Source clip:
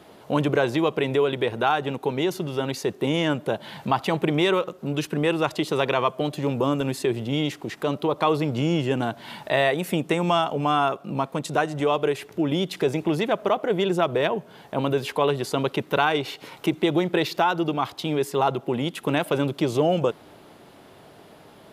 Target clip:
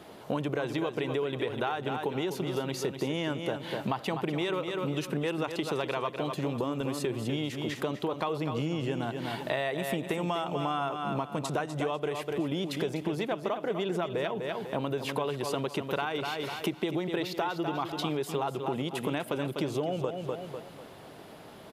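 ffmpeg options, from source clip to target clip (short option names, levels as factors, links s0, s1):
-filter_complex "[0:a]asplit=2[s0][s1];[s1]aecho=0:1:248|496|744|992:0.355|0.117|0.0386|0.0128[s2];[s0][s2]amix=inputs=2:normalize=0,acompressor=threshold=0.0398:ratio=6"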